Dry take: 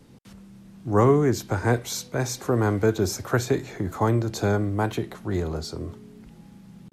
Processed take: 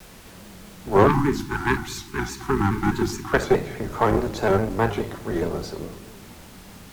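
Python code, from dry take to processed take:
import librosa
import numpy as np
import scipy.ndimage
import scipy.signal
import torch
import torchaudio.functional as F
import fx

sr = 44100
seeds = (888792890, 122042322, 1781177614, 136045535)

y = fx.octave_divider(x, sr, octaves=1, level_db=1.0)
y = fx.bass_treble(y, sr, bass_db=-12, treble_db=-10)
y = fx.room_shoebox(y, sr, seeds[0], volume_m3=1900.0, walls='furnished', distance_m=1.3)
y = fx.dmg_noise_colour(y, sr, seeds[1], colour='pink', level_db=-48.0)
y = fx.cheby_harmonics(y, sr, harmonics=(4, 5, 7), levels_db=(-16, -26, -26), full_scale_db=-8.0)
y = fx.spec_erase(y, sr, start_s=1.07, length_s=2.26, low_hz=390.0, high_hz=780.0)
y = fx.vibrato_shape(y, sr, shape='square', rate_hz=4.8, depth_cents=100.0)
y = y * librosa.db_to_amplitude(3.5)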